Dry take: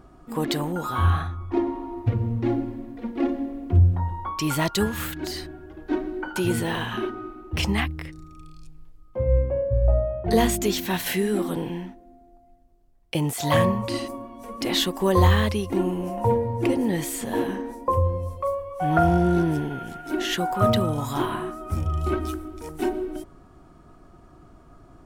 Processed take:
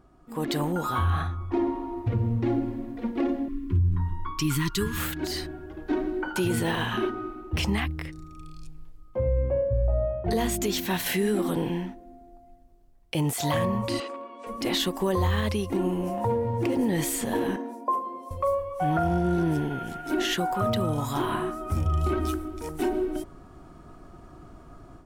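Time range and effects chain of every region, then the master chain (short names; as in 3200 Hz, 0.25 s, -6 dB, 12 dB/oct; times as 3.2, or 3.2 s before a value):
3.48–4.98 elliptic band-stop 400–1000 Hz + low shelf 66 Hz +12 dB + comb 6.8 ms, depth 44%
14–14.47 overloaded stage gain 29 dB + speaker cabinet 450–6900 Hz, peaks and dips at 460 Hz +8 dB, 740 Hz -5 dB, 1300 Hz +4 dB, 2600 Hz +6 dB, 5900 Hz -9 dB
16.14–16.79 HPF 60 Hz + compressor 2:1, threshold -26 dBFS + running maximum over 3 samples
17.56–18.31 rippled Chebyshev high-pass 160 Hz, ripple 9 dB + comb 2.9 ms, depth 92%
whole clip: AGC gain up to 11 dB; limiter -9 dBFS; gain -8 dB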